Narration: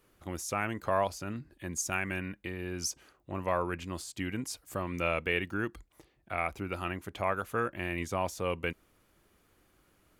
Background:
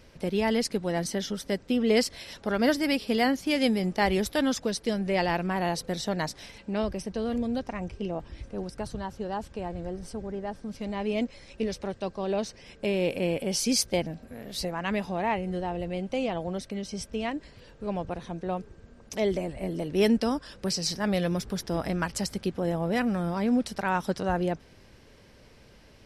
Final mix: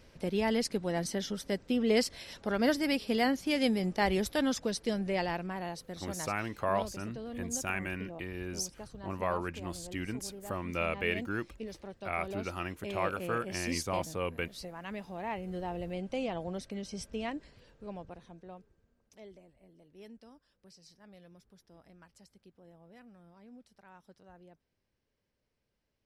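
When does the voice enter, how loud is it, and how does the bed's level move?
5.75 s, -2.0 dB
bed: 4.99 s -4 dB
5.79 s -12 dB
15.06 s -12 dB
15.68 s -5.5 dB
17.32 s -5.5 dB
19.65 s -29 dB

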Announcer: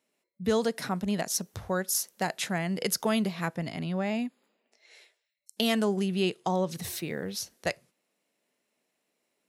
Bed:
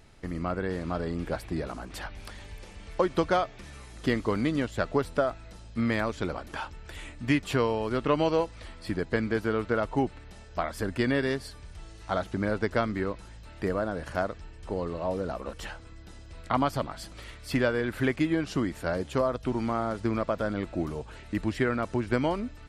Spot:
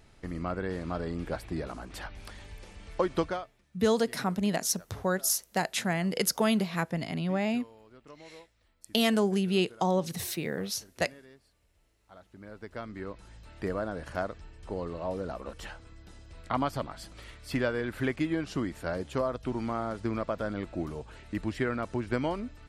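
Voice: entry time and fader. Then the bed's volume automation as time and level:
3.35 s, +1.0 dB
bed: 3.22 s -2.5 dB
3.67 s -26 dB
12.04 s -26 dB
13.35 s -3.5 dB

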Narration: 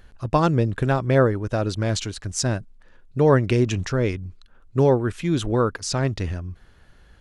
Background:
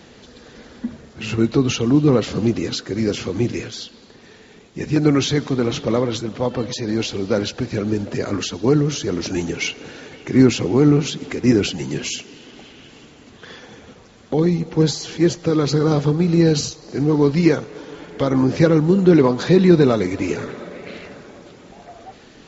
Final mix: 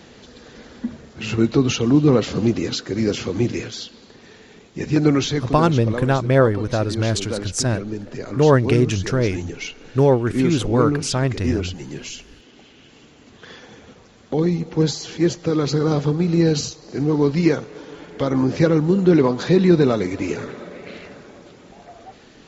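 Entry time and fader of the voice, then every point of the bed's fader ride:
5.20 s, +2.5 dB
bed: 5.02 s 0 dB
5.8 s -7.5 dB
12.38 s -7.5 dB
13.41 s -2 dB

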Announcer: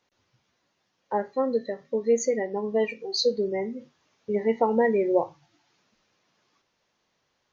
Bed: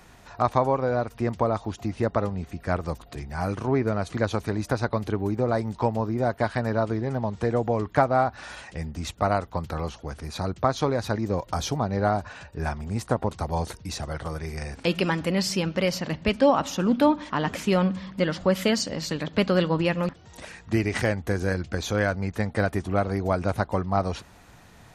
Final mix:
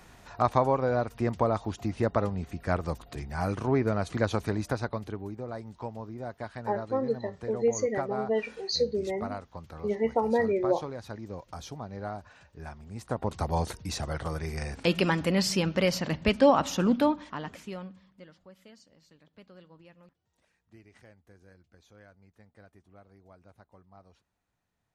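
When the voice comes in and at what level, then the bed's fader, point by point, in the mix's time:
5.55 s, -3.5 dB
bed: 4.52 s -2 dB
5.42 s -13.5 dB
12.89 s -13.5 dB
13.38 s -1 dB
16.85 s -1 dB
18.49 s -31 dB

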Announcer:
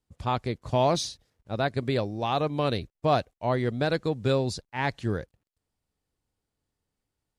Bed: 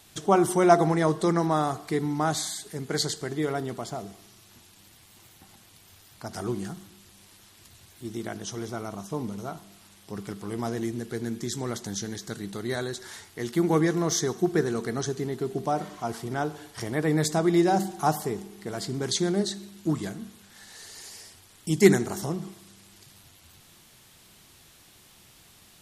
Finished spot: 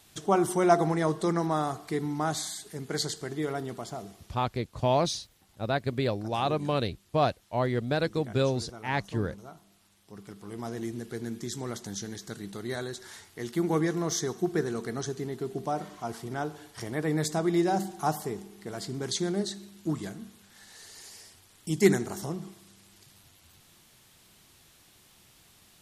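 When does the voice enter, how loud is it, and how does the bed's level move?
4.10 s, -1.5 dB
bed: 4.09 s -3.5 dB
4.63 s -11 dB
10.06 s -11 dB
10.91 s -4 dB

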